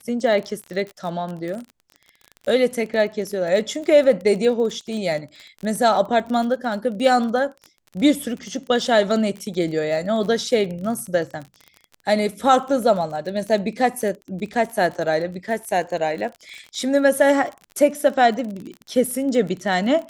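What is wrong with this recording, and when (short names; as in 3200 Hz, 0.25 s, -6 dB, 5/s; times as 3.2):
crackle 33/s -29 dBFS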